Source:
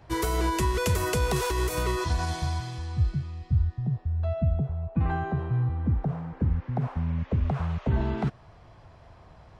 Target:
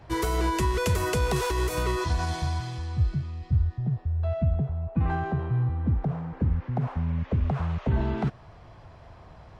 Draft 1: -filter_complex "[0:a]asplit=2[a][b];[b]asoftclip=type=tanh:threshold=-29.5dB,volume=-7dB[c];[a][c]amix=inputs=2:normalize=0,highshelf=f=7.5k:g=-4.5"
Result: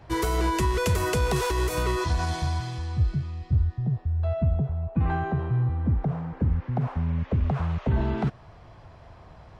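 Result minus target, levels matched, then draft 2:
soft clip: distortion -5 dB
-filter_complex "[0:a]asplit=2[a][b];[b]asoftclip=type=tanh:threshold=-40.5dB,volume=-7dB[c];[a][c]amix=inputs=2:normalize=0,highshelf=f=7.5k:g=-4.5"

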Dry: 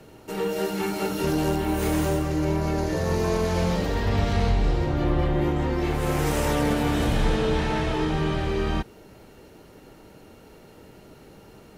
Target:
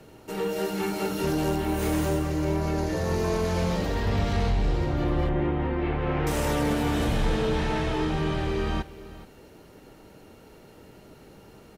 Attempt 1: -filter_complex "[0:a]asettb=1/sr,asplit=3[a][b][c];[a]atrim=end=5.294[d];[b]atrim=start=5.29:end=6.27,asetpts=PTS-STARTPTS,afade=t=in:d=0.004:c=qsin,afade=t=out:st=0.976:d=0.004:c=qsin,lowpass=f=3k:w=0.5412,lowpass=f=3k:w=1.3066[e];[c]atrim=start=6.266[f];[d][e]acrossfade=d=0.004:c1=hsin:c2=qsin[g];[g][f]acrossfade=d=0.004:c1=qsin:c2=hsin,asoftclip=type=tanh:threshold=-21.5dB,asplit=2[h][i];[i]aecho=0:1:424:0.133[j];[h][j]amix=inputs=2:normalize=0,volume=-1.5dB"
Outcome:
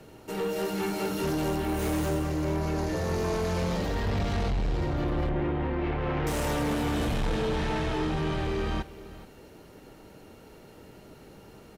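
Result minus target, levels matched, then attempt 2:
soft clip: distortion +13 dB
-filter_complex "[0:a]asettb=1/sr,asplit=3[a][b][c];[a]atrim=end=5.294[d];[b]atrim=start=5.29:end=6.27,asetpts=PTS-STARTPTS,afade=t=in:d=0.004:c=qsin,afade=t=out:st=0.976:d=0.004:c=qsin,lowpass=f=3k:w=0.5412,lowpass=f=3k:w=1.3066[e];[c]atrim=start=6.266[f];[d][e]acrossfade=d=0.004:c1=hsin:c2=qsin[g];[g][f]acrossfade=d=0.004:c1=qsin:c2=hsin,asoftclip=type=tanh:threshold=-12dB,asplit=2[h][i];[i]aecho=0:1:424:0.133[j];[h][j]amix=inputs=2:normalize=0,volume=-1.5dB"

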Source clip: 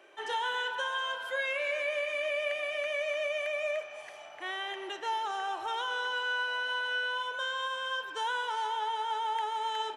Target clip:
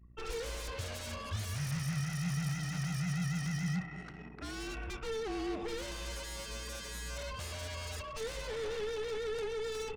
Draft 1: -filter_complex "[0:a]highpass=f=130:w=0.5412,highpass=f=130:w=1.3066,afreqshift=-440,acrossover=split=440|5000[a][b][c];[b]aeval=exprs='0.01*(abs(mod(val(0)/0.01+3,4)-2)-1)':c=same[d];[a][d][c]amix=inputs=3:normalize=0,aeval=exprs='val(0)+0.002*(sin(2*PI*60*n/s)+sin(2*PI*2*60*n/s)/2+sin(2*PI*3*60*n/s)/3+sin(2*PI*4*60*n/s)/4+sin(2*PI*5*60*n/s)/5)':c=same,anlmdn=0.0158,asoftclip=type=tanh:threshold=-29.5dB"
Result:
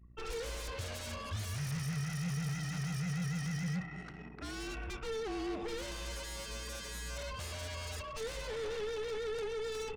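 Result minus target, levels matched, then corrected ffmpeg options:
soft clip: distortion +19 dB
-filter_complex "[0:a]highpass=f=130:w=0.5412,highpass=f=130:w=1.3066,afreqshift=-440,acrossover=split=440|5000[a][b][c];[b]aeval=exprs='0.01*(abs(mod(val(0)/0.01+3,4)-2)-1)':c=same[d];[a][d][c]amix=inputs=3:normalize=0,aeval=exprs='val(0)+0.002*(sin(2*PI*60*n/s)+sin(2*PI*2*60*n/s)/2+sin(2*PI*3*60*n/s)/3+sin(2*PI*4*60*n/s)/4+sin(2*PI*5*60*n/s)/5)':c=same,anlmdn=0.0158,asoftclip=type=tanh:threshold=-18.5dB"

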